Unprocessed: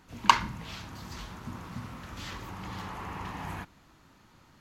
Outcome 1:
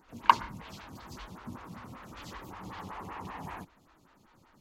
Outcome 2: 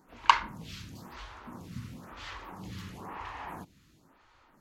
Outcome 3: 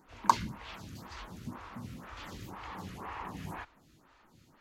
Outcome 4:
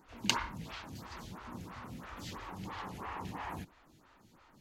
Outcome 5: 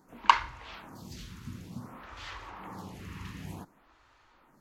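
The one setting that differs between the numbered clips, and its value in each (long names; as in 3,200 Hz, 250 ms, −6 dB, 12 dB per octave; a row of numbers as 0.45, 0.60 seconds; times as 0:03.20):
phaser with staggered stages, speed: 5.2, 0.99, 2, 3, 0.55 Hertz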